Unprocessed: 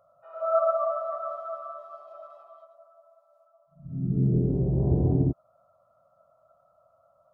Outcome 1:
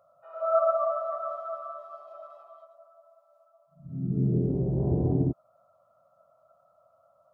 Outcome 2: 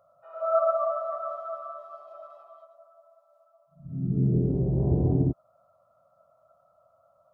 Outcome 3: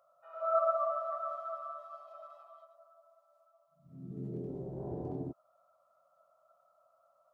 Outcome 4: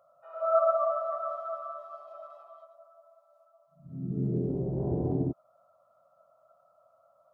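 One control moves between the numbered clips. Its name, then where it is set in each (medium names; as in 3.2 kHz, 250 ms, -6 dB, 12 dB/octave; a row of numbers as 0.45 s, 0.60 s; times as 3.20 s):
high-pass, cutoff frequency: 120 Hz, 40 Hz, 1.3 kHz, 310 Hz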